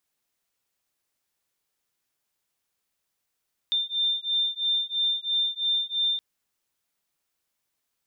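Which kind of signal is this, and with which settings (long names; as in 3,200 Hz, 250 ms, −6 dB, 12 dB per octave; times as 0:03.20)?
two tones that beat 3,590 Hz, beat 3 Hz, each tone −26.5 dBFS 2.47 s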